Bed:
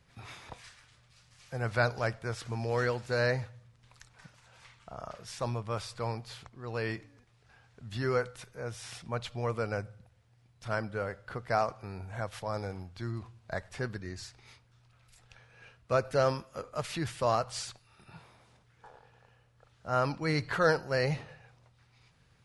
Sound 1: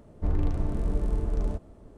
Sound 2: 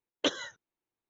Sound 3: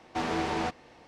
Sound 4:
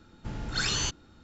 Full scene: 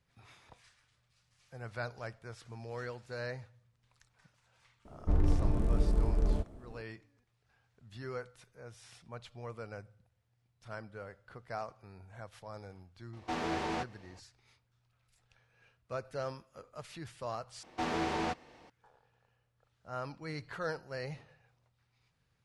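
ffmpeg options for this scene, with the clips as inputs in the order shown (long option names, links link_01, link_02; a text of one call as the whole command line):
ffmpeg -i bed.wav -i cue0.wav -i cue1.wav -i cue2.wav -filter_complex "[3:a]asplit=2[link_01][link_02];[0:a]volume=-11.5dB,asplit=2[link_03][link_04];[link_03]atrim=end=17.634[link_05];[link_02]atrim=end=1.07,asetpts=PTS-STARTPTS,volume=-3.5dB[link_06];[link_04]atrim=start=18.696[link_07];[1:a]atrim=end=1.97,asetpts=PTS-STARTPTS,volume=-1.5dB,afade=type=in:duration=0.004:curve=hsin,afade=type=out:start_time=1.966:duration=0.004:curve=hsin,adelay=213885S[link_08];[link_01]atrim=end=1.07,asetpts=PTS-STARTPTS,volume=-5dB,afade=type=in:duration=0.004:curve=hsin,afade=type=out:start_time=1.066:duration=0.004:curve=hsin,adelay=13130[link_09];[link_05][link_06]acrossfade=duration=0.004:curve1=hsin:curve2=hsin[link_10];[link_10][link_07]acrossfade=duration=0.004:curve1=hsin:curve2=hsin[link_11];[link_11][link_08][link_09]amix=inputs=3:normalize=0" out.wav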